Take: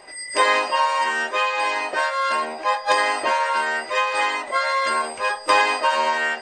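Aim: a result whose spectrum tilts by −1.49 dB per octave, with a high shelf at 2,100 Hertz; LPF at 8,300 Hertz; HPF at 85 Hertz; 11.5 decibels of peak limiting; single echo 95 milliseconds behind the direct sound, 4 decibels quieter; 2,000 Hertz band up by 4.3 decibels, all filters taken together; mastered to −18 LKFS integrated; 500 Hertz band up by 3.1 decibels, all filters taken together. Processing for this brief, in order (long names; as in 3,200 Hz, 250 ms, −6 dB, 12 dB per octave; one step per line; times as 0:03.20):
high-pass filter 85 Hz
low-pass filter 8,300 Hz
parametric band 500 Hz +3.5 dB
parametric band 2,000 Hz +8 dB
high-shelf EQ 2,100 Hz −5.5 dB
brickwall limiter −15 dBFS
single-tap delay 95 ms −4 dB
level +3.5 dB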